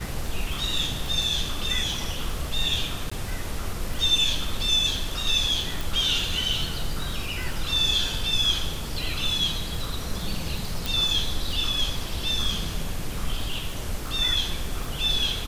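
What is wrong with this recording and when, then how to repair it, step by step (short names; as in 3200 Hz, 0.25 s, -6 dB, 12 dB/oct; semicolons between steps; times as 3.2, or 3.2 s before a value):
crackle 42/s -30 dBFS
3.1–3.12 gap 15 ms
5.81 pop
10.86 pop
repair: de-click; interpolate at 3.1, 15 ms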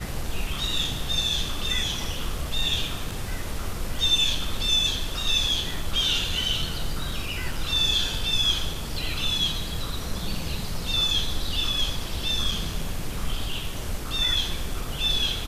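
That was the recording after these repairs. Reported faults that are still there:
none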